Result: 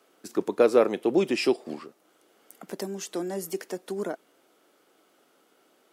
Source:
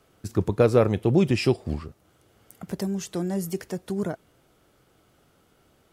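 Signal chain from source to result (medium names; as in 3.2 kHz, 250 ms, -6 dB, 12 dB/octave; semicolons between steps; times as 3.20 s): high-pass 260 Hz 24 dB/octave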